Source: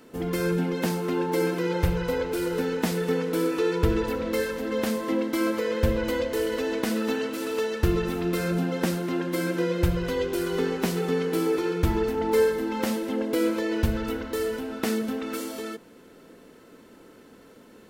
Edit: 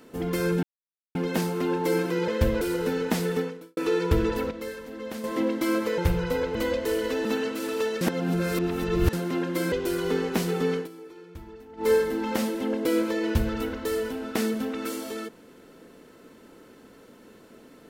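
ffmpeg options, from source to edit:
-filter_complex "[0:a]asplit=15[a][b][c][d][e][f][g][h][i][j][k][l][m][n][o];[a]atrim=end=0.63,asetpts=PTS-STARTPTS,afade=t=out:st=0.626:d=0.004:c=hsin,apad=pad_dur=0.52[p];[b]atrim=start=0.63:end=1.762,asetpts=PTS-STARTPTS,afade=t=in:d=0.004:c=hsin[q];[c]atrim=start=5.698:end=6.032[r];[d]atrim=start=2.328:end=3.49,asetpts=PTS-STARTPTS,afade=t=out:st=0.742:d=0.42:c=qua[s];[e]atrim=start=3.49:end=4.232,asetpts=PTS-STARTPTS,afade=t=in:d=0.004:c=hsin[t];[f]atrim=start=4.228:end=4.962,asetpts=PTS-STARTPTS,volume=-9dB[u];[g]atrim=start=4.958:end=5.702[v];[h]atrim=start=1.758:end=2.332[w];[i]atrim=start=6.028:end=6.732[x];[j]atrim=start=7.028:end=7.792[y];[k]atrim=start=7.788:end=8.912,asetpts=PTS-STARTPTS,areverse[z];[l]atrim=start=8.908:end=9.502[aa];[m]atrim=start=10.198:end=11.36,asetpts=PTS-STARTPTS,afade=t=out:st=0.992:d=0.17:c=qsin:silence=0.105925[ab];[n]atrim=start=11.36:end=12.25,asetpts=PTS-STARTPTS,volume=-19.5dB[ac];[o]atrim=start=12.25,asetpts=PTS-STARTPTS,afade=t=in:d=0.17:c=qsin:silence=0.105925[ad];[p][q]concat=n=2:v=0:a=1[ae];[ae][r]acrossfade=d=0.004:c1=hsin:c2=hsin[af];[s][t]concat=n=2:v=0:a=1[ag];[af][ag]acrossfade=d=0.004:c1=hsin:c2=hsin[ah];[ah][u]acrossfade=d=0.004:c1=hsin:c2=hsin[ai];[ai][v]acrossfade=d=0.004:c1=hsin:c2=hsin[aj];[aj][w]acrossfade=d=0.004:c1=hsin:c2=hsin[ak];[ak][x]acrossfade=d=0.004:c1=hsin:c2=hsin[al];[al][y]acrossfade=d=0.004:c1=hsin:c2=hsin[am];[am][z]acrossfade=d=0.004:c1=hsin:c2=hsin[an];[an][aa]acrossfade=d=0.004:c1=hsin:c2=hsin[ao];[ab][ac][ad]concat=n=3:v=0:a=1[ap];[ao][ap]acrossfade=d=0.004:c1=hsin:c2=hsin"

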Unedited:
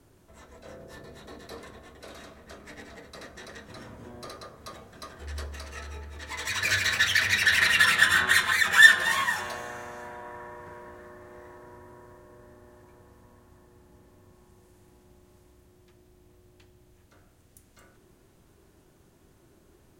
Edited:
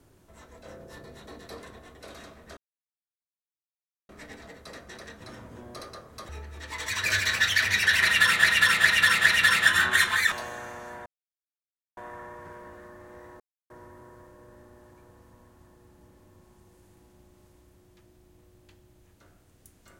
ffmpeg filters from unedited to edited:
-filter_complex "[0:a]asplit=9[a][b][c][d][e][f][g][h][i];[a]atrim=end=2.57,asetpts=PTS-STARTPTS,afade=t=out:st=2.566:d=0.004:c=hsin,apad=pad_dur=1.52[j];[b]atrim=start=2.57:end=4.772,asetpts=PTS-STARTPTS,afade=t=in:d=0.004:c=hsin[k];[c]atrim=start=5.878:end=8.032[l];[d]atrim=start=7.618:end=8.032[m];[e]atrim=start=7.618:end=8.032[n];[f]atrim=start=7.618:end=8.682[o];[g]atrim=start=9.438:end=10.18,asetpts=PTS-STARTPTS,afade=t=out:st=0.738:d=0.004:c=hsin,apad=pad_dur=0.91[p];[h]atrim=start=10.18:end=11.61,asetpts=PTS-STARTPTS,afade=t=in:d=0.004:c=hsin,afade=t=out:st=1.426:d=0.004:c=hsin,apad=pad_dur=0.3[q];[i]atrim=start=11.61,asetpts=PTS-STARTPTS,afade=t=in:d=0.004:c=hsin[r];[j][k]concat=n=2:v=0:a=1[s];[s][l]acrossfade=d=0.004:c1=hsin:c2=hsin[t];[t][m]acrossfade=d=0.004:c1=hsin:c2=hsin[u];[u][n]acrossfade=d=0.004:c1=hsin:c2=hsin[v];[v][o]acrossfade=d=0.004:c1=hsin:c2=hsin[w];[p][q][r]concat=n=3:v=0:a=1[x];[w][x]acrossfade=d=0.004:c1=hsin:c2=hsin"

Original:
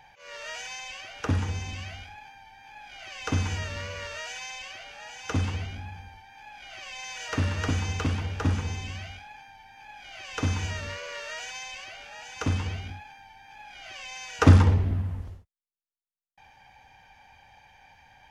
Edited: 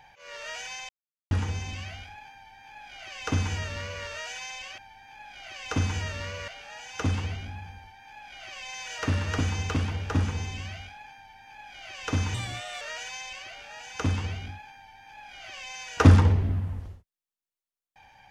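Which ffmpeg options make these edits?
-filter_complex "[0:a]asplit=7[a][b][c][d][e][f][g];[a]atrim=end=0.89,asetpts=PTS-STARTPTS,afade=t=out:st=0.886:d=0.004:c=hsin[h];[b]atrim=start=0.89:end=1.31,asetpts=PTS-STARTPTS,volume=0[i];[c]atrim=start=1.31:end=4.782,asetpts=PTS-STARTPTS,afade=t=in:d=0.004:c=hsin[j];[d]atrim=start=2.338:end=4.042[k];[e]atrim=start=4.778:end=10.644[l];[f]atrim=start=10.64:end=11.23,asetpts=PTS-STARTPTS,asetrate=55125,aresample=44100,atrim=end_sample=20815,asetpts=PTS-STARTPTS[m];[g]atrim=start=11.226[n];[h][i][j]concat=n=3:v=0:a=1[o];[o][k]acrossfade=d=0.004:c1=hsin:c2=hsin[p];[p][l]acrossfade=d=0.004:c1=hsin:c2=hsin[q];[q][m]acrossfade=d=0.004:c1=hsin:c2=hsin[r];[r][n]acrossfade=d=0.004:c1=hsin:c2=hsin"

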